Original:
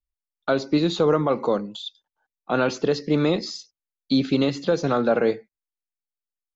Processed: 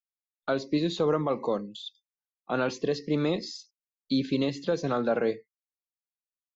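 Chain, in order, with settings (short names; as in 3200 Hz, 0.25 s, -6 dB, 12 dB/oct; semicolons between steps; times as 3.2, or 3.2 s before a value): spectral noise reduction 28 dB; gain -6 dB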